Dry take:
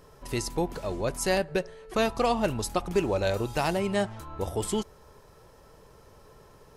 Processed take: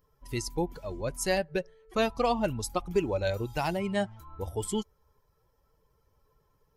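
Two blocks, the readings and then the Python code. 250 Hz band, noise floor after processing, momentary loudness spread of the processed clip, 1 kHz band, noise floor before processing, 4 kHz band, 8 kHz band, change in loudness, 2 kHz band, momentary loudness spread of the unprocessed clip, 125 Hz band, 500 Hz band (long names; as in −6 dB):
−2.0 dB, −71 dBFS, 8 LU, −2.5 dB, −55 dBFS, −3.0 dB, −2.5 dB, −2.5 dB, −2.5 dB, 7 LU, −2.0 dB, −2.5 dB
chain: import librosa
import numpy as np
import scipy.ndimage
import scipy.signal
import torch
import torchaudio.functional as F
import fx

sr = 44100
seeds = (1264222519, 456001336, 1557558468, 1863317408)

y = fx.bin_expand(x, sr, power=1.5)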